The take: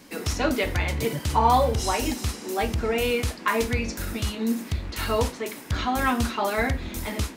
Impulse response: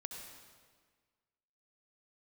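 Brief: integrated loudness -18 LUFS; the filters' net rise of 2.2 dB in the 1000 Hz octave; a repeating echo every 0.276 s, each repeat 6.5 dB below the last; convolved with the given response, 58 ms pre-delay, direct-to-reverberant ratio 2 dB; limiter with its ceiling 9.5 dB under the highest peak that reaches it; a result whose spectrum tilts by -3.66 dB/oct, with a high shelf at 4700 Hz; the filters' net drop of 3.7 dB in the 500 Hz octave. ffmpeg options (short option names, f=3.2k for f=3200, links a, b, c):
-filter_complex "[0:a]equalizer=f=500:t=o:g=-5.5,equalizer=f=1k:t=o:g=4,highshelf=f=4.7k:g=8.5,alimiter=limit=-16dB:level=0:latency=1,aecho=1:1:276|552|828|1104|1380|1656:0.473|0.222|0.105|0.0491|0.0231|0.0109,asplit=2[a][b];[1:a]atrim=start_sample=2205,adelay=58[c];[b][c]afir=irnorm=-1:irlink=0,volume=0.5dB[d];[a][d]amix=inputs=2:normalize=0,volume=5.5dB"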